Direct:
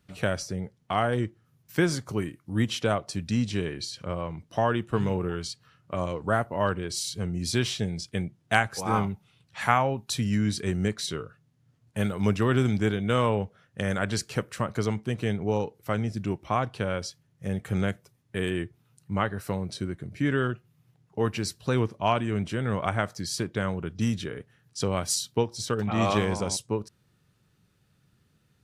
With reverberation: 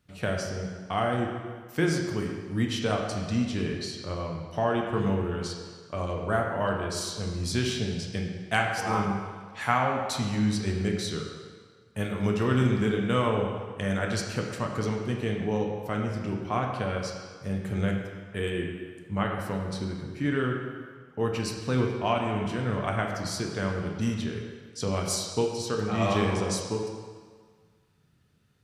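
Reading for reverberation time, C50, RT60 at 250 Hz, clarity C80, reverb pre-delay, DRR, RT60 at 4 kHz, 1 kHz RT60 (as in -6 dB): 1.7 s, 3.0 dB, 1.4 s, 4.5 dB, 5 ms, 0.5 dB, 1.4 s, 1.7 s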